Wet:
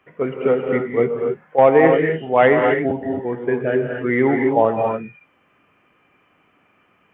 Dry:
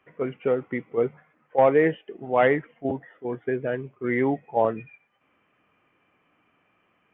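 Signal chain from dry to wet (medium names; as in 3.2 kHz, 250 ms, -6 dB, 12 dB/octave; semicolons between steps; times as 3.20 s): gated-style reverb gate 300 ms rising, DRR 2 dB; trim +5.5 dB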